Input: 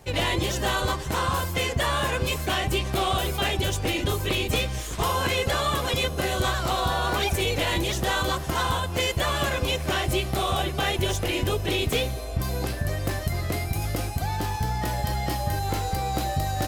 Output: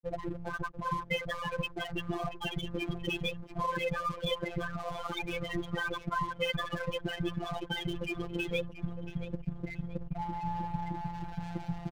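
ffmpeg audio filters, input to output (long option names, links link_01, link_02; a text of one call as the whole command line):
ffmpeg -i in.wav -filter_complex "[0:a]aemphasis=mode=reproduction:type=75kf,acrossover=split=1900[link_01][link_02];[link_02]dynaudnorm=framelen=220:gausssize=5:maxgain=7dB[link_03];[link_01][link_03]amix=inputs=2:normalize=0,atempo=1.4,lowpass=5700,equalizer=frequency=360:width=2.9:gain=-2,afftfilt=real='re*gte(hypot(re,im),0.2)':imag='im*gte(hypot(re,im),0.2)':win_size=1024:overlap=0.75,asplit=2[link_04][link_05];[link_05]adelay=679,lowpass=frequency=3500:poles=1,volume=-13.5dB,asplit=2[link_06][link_07];[link_07]adelay=679,lowpass=frequency=3500:poles=1,volume=0.4,asplit=2[link_08][link_09];[link_09]adelay=679,lowpass=frequency=3500:poles=1,volume=0.4,asplit=2[link_10][link_11];[link_11]adelay=679,lowpass=frequency=3500:poles=1,volume=0.4[link_12];[link_06][link_08][link_10][link_12]amix=inputs=4:normalize=0[link_13];[link_04][link_13]amix=inputs=2:normalize=0,aeval=exprs='sgn(val(0))*max(abs(val(0))-0.0075,0)':channel_layout=same,afftfilt=real='hypot(re,im)*cos(PI*b)':imag='0':win_size=1024:overlap=0.75" out.wav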